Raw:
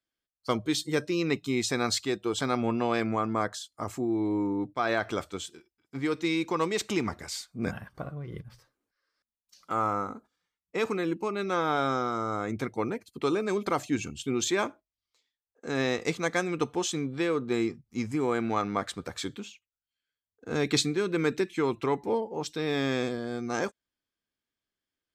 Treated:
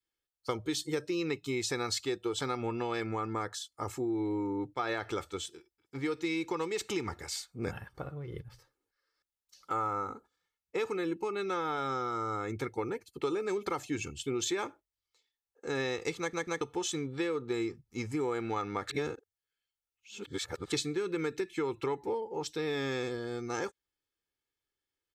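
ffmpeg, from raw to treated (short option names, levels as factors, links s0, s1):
-filter_complex "[0:a]asplit=6[s0][s1][s2][s3][s4][s5];[s0]atrim=end=16.332[s6];[s1]atrim=start=16.188:end=16.332[s7];[s2]atrim=start=16.188:end=16.332[s8];[s3]atrim=start=16.608:end=18.902[s9];[s4]atrim=start=18.898:end=20.722,asetpts=PTS-STARTPTS,areverse[s10];[s5]atrim=start=20.718[s11];[s6][s7]acrossfade=d=0.004:c1=hsin:c2=hsin[s12];[s12][s8]acrossfade=d=0.004:c1=hsin:c2=hsin[s13];[s13][s9]acrossfade=d=0.004:c1=hsin:c2=hsin[s14];[s14][s10]acrossfade=d=0.004:c1=hsin:c2=hsin[s15];[s15][s11]acrossfade=d=0.004:c1=hsin:c2=hsin,aecho=1:1:2.3:0.54,acompressor=threshold=0.0501:ratio=6,adynamicequalizer=threshold=0.00794:dfrequency=590:dqfactor=1.7:tfrequency=590:tqfactor=1.7:attack=5:release=100:ratio=0.375:range=2:mode=cutabove:tftype=bell,volume=0.75"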